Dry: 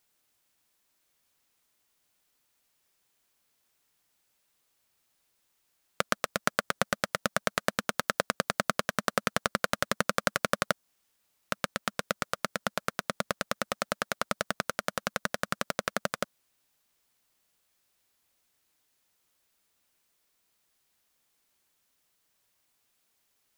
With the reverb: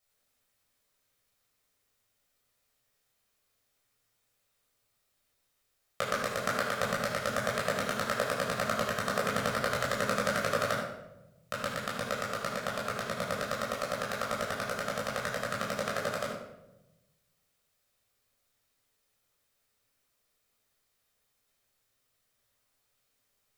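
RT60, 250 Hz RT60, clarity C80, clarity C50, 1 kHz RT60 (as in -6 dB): 1.0 s, 1.3 s, 4.0 dB, 2.0 dB, 0.85 s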